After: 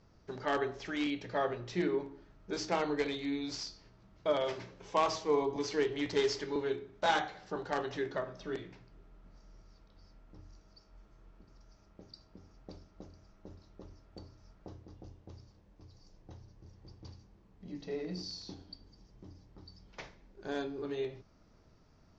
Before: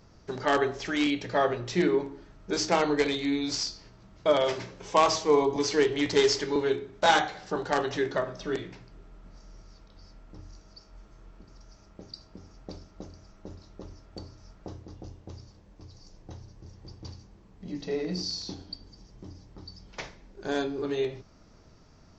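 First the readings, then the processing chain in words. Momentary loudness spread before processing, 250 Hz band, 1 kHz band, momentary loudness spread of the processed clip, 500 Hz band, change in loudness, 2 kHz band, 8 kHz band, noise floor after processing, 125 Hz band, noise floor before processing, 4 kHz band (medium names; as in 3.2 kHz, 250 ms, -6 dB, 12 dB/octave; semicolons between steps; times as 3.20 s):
22 LU, -7.5 dB, -8.0 dB, 22 LU, -7.5 dB, -8.0 dB, -8.0 dB, no reading, -64 dBFS, -7.5 dB, -56 dBFS, -9.5 dB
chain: distance through air 65 m; trim -7.5 dB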